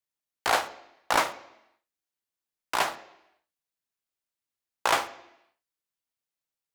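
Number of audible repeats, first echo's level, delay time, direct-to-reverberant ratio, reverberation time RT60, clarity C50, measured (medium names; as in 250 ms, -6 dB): no echo, no echo, no echo, 10.0 dB, 0.85 s, 15.5 dB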